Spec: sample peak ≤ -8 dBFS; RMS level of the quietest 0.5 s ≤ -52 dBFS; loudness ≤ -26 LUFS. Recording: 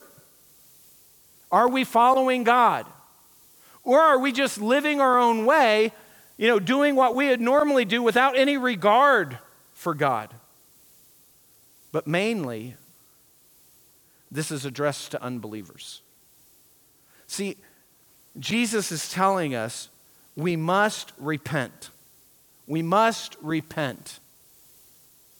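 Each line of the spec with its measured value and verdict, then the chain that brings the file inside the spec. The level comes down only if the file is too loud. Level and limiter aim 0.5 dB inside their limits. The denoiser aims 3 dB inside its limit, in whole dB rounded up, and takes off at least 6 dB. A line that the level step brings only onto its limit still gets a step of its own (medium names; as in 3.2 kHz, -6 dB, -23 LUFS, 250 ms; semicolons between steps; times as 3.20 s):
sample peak -6.5 dBFS: fail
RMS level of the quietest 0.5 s -59 dBFS: pass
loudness -22.5 LUFS: fail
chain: trim -4 dB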